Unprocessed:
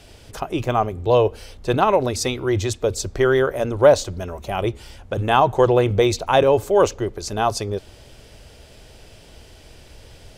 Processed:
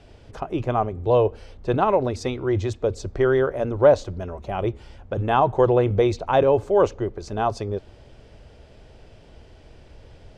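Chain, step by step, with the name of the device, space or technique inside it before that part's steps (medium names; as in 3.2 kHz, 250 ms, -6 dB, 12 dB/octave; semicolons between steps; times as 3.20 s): through cloth (low-pass 7.3 kHz 12 dB/octave; treble shelf 2.4 kHz -12 dB); trim -1.5 dB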